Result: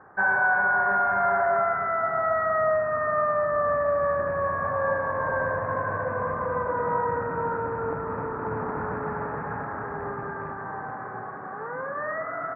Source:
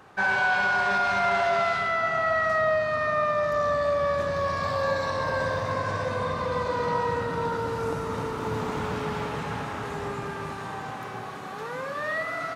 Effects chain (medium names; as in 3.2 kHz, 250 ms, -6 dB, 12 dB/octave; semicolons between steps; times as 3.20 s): rattle on loud lows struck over -34 dBFS, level -29 dBFS; elliptic low-pass 1.7 kHz, stop band 50 dB; bass shelf 420 Hz -5 dB; trim +2.5 dB